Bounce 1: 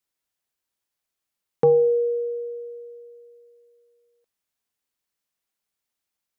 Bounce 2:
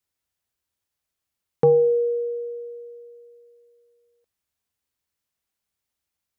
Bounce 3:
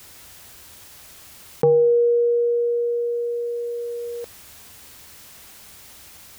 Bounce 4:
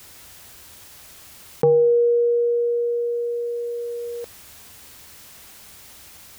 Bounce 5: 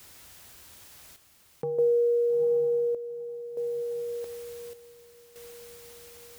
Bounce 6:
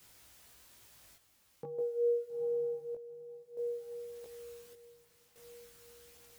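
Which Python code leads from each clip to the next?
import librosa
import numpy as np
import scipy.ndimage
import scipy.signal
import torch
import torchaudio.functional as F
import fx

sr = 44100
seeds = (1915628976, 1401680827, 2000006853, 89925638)

y1 = fx.peak_eq(x, sr, hz=75.0, db=11.5, octaves=1.4)
y2 = fx.env_flatten(y1, sr, amount_pct=70)
y2 = y2 * 10.0 ** (-1.0 / 20.0)
y3 = y2
y4 = fx.echo_diffused(y3, sr, ms=905, feedback_pct=51, wet_db=-14.0)
y4 = fx.chopper(y4, sr, hz=0.56, depth_pct=65, duty_pct=65)
y4 = y4 * 10.0 ** (-6.0 / 20.0)
y5 = fx.chorus_voices(y4, sr, voices=2, hz=0.48, base_ms=18, depth_ms=2.1, mix_pct=45)
y5 = y5 * 10.0 ** (-6.0 / 20.0)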